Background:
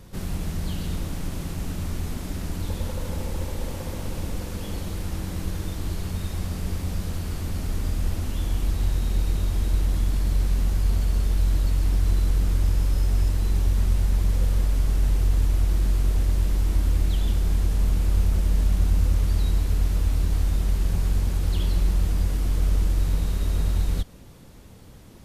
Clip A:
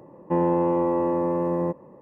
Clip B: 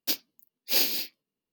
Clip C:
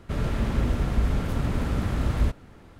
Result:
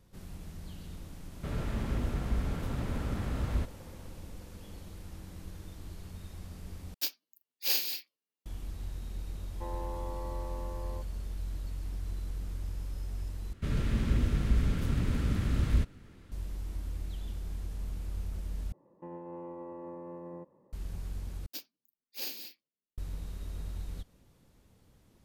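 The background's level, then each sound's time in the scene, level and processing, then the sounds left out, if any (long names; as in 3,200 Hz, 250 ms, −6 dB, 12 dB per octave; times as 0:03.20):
background −16 dB
0:01.34: mix in C −8 dB
0:06.94: overwrite with B −5 dB + high-pass filter 800 Hz 6 dB per octave
0:09.30: mix in A −15 dB + high-pass filter 560 Hz
0:13.53: overwrite with C −3 dB + parametric band 770 Hz −10.5 dB 1.5 octaves
0:18.72: overwrite with A −17 dB + brickwall limiter −19.5 dBFS
0:21.46: overwrite with B −14.5 dB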